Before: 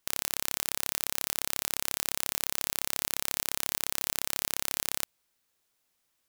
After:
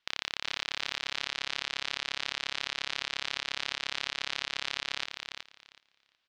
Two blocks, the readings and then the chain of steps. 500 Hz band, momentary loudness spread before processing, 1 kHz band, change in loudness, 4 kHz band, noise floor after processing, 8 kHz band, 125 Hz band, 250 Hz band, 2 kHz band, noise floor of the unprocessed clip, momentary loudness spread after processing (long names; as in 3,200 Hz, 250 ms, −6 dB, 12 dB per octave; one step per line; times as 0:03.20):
−3.0 dB, 0 LU, +1.0 dB, −3.5 dB, +3.5 dB, −79 dBFS, −13.5 dB, −5.0 dB, −5.5 dB, +4.5 dB, −77 dBFS, 3 LU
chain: low-pass filter 4,000 Hz 24 dB per octave
tilt shelving filter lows −7 dB, about 1,100 Hz
on a send: repeating echo 372 ms, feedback 17%, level −6 dB